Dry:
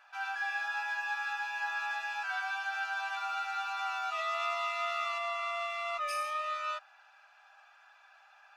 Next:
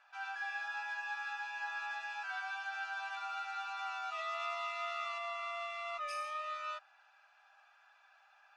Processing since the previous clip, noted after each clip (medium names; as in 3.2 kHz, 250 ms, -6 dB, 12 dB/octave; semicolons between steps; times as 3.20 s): low-pass 8.6 kHz 12 dB/octave; trim -5.5 dB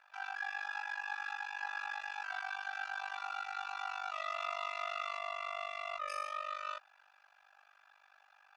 AM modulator 49 Hz, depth 90%; trim +4 dB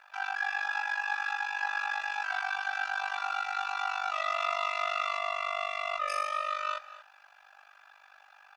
delay 233 ms -15.5 dB; trim +8 dB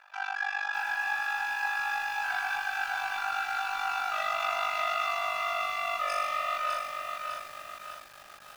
bit-crushed delay 604 ms, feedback 55%, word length 8-bit, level -4 dB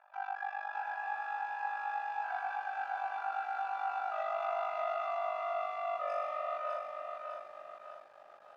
band-pass filter 630 Hz, Q 2.1; trim +2 dB